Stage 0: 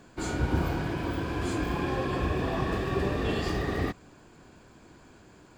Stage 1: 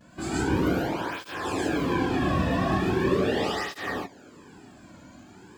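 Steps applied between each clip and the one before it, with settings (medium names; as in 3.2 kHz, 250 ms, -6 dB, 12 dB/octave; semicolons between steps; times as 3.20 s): vibrato 0.94 Hz 71 cents; gated-style reverb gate 170 ms rising, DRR -3.5 dB; cancelling through-zero flanger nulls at 0.4 Hz, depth 2.6 ms; trim +2 dB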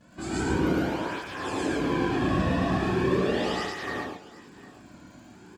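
low-pass 11 kHz 12 dB/octave; crackle 130 per s -51 dBFS; on a send: multi-tap echo 109/757 ms -3.5/-19.5 dB; on the sum: trim -2.5 dB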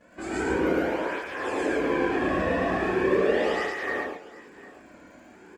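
graphic EQ 125/500/2000/4000 Hz -10/+10/+9/-5 dB; trim -3 dB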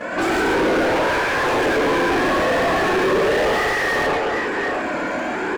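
overdrive pedal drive 41 dB, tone 1.6 kHz, clips at -11 dBFS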